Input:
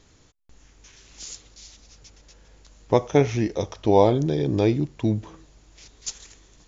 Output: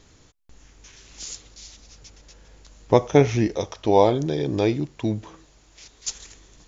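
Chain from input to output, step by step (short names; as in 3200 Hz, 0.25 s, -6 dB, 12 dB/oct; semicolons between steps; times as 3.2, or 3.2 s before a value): 3.56–6.09 low shelf 360 Hz -6.5 dB; gain +2.5 dB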